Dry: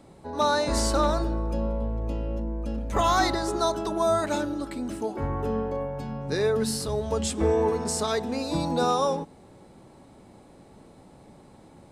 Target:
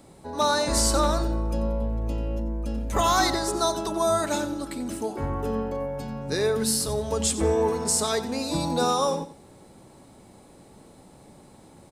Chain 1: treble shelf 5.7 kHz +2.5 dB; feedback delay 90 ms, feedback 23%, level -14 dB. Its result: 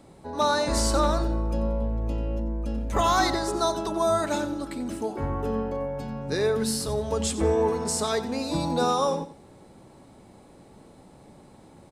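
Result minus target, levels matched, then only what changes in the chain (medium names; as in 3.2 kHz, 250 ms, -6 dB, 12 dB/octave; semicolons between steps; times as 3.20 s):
8 kHz band -4.5 dB
change: treble shelf 5.7 kHz +10.5 dB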